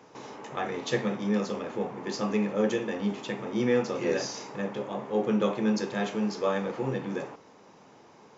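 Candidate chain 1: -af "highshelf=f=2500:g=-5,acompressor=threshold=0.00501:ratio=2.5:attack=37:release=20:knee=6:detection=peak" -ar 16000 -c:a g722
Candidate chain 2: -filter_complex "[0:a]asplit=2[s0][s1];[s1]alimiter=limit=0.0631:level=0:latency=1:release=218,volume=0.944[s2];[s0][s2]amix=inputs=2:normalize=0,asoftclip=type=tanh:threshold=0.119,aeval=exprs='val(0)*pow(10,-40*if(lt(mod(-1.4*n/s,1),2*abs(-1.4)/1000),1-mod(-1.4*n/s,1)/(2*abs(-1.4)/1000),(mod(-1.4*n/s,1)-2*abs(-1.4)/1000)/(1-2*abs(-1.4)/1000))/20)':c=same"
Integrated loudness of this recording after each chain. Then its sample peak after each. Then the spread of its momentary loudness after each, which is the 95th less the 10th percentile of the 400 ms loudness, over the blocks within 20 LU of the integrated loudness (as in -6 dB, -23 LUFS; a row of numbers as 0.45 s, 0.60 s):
-39.0 LUFS, -37.0 LUFS; -23.0 dBFS, -19.5 dBFS; 9 LU, 17 LU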